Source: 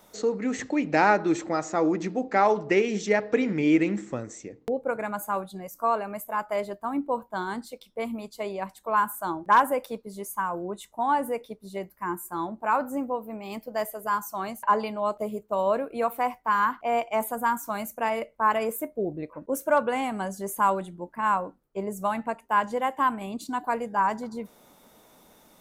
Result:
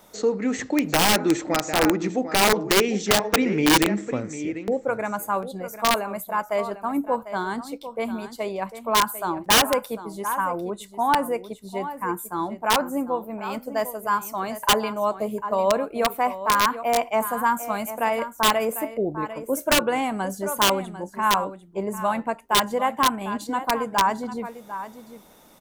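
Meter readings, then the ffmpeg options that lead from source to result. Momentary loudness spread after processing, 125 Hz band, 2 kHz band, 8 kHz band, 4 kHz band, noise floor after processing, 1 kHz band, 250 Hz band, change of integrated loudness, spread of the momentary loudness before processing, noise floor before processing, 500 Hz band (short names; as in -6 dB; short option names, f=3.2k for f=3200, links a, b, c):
11 LU, +4.5 dB, +4.5 dB, +13.0 dB, +18.0 dB, -48 dBFS, +2.0 dB, +3.0 dB, +4.0 dB, 12 LU, -59 dBFS, +3.0 dB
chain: -af "aecho=1:1:748:0.237,aeval=exprs='(mod(5.31*val(0)+1,2)-1)/5.31':c=same,volume=3.5dB"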